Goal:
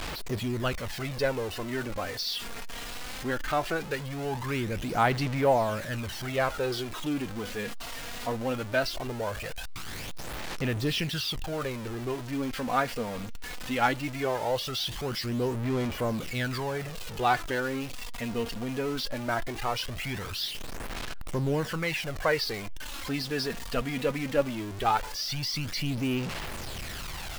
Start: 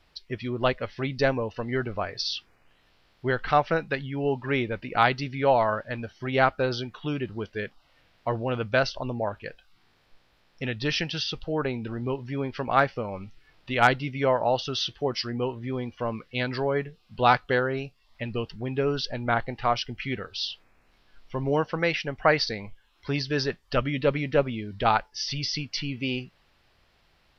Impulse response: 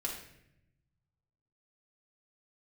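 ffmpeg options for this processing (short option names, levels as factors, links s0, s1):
-af "aeval=exprs='val(0)+0.5*0.0501*sgn(val(0))':c=same,aphaser=in_gain=1:out_gain=1:delay=4.3:decay=0.46:speed=0.19:type=sinusoidal,volume=0.422"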